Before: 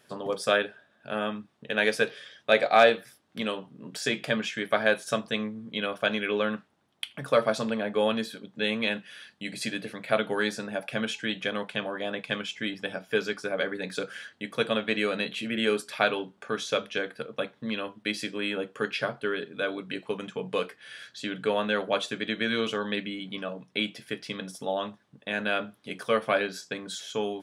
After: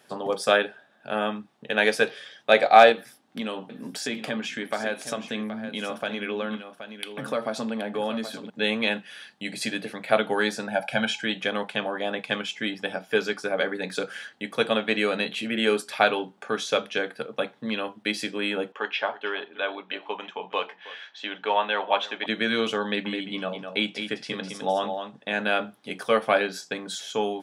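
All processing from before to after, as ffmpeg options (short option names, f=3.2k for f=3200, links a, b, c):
-filter_complex "[0:a]asettb=1/sr,asplit=3[a][b][c];[a]atrim=end=2.924[d];[b]atrim=start=2.92:end=8.5,asetpts=PTS-STARTPTS,afade=t=in:d=0.004:c=qsin,afade=t=out:st=5.576:d=0.004:c=qsin,equalizer=f=250:t=o:w=0.3:g=8.5,acompressor=threshold=-33dB:ratio=2:attack=3.2:release=140:knee=1:detection=peak,aecho=1:1:774:0.299,atrim=end_sample=246078[e];[c]atrim=start=8.496[f];[d][e]acrossfade=d=0.004:c1=hsin:c2=qsin[g];[g][f]acrossfade=d=0.004:c1=qsin:c2=hsin,asettb=1/sr,asplit=3[h][i][j];[h]atrim=end=10.674[k];[i]atrim=start=10.67:end=11.24,asetpts=PTS-STARTPTS,afade=t=in:d=0.004:c=qsin,afade=t=out:st=0.566:d=0.004:c=qsin,acrossover=split=8000[l][m];[m]acompressor=threshold=-57dB:ratio=4:attack=1:release=60[n];[l][n]amix=inputs=2:normalize=0,aecho=1:1:1.3:0.75,atrim=end_sample=25137[o];[j]atrim=start=11.236[p];[k][o]acrossfade=d=0.004:c1=hsin:c2=qsin[q];[q][p]acrossfade=d=0.004:c1=qsin:c2=hsin,asettb=1/sr,asplit=3[r][s][t];[r]atrim=end=18.724[u];[s]atrim=start=18.72:end=22.26,asetpts=PTS-STARTPTS,afade=t=in:d=0.004:c=qsin,afade=t=out:st=3.536:d=0.004:c=qsin,highpass=450,equalizer=f=480:t=q:w=4:g=-5,equalizer=f=940:t=q:w=4:g=7,equalizer=f=1.4k:t=q:w=4:g=-3,equalizer=f=3k:t=q:w=4:g=3,equalizer=f=4.6k:t=q:w=4:g=-10,lowpass=f=5k:w=0.5412,lowpass=f=5k:w=1.3066,aecho=1:1:318:0.126,atrim=end_sample=156114[v];[t]atrim=start=22.256[w];[u][v]acrossfade=d=0.004:c1=hsin:c2=qsin[x];[x][w]acrossfade=d=0.004:c1=qsin:c2=hsin,asettb=1/sr,asplit=3[y][z][aa];[y]atrim=end=22.844[ab];[z]atrim=start=22.84:end=25.45,asetpts=PTS-STARTPTS,afade=t=in:d=0.004:c=qsin,afade=t=out:st=2.606:d=0.004:c=qsin,lowpass=f=9.3k:w=0.5412,lowpass=f=9.3k:w=1.3066,aecho=1:1:208:0.447,atrim=end_sample=115101[ac];[aa]atrim=start=25.446[ad];[ab][ac]acrossfade=d=0.004:c1=hsin:c2=qsin[ae];[ae][ad]acrossfade=d=0.004:c1=qsin:c2=hsin,highpass=150,equalizer=f=800:t=o:w=0.24:g=7.5,volume=3dB"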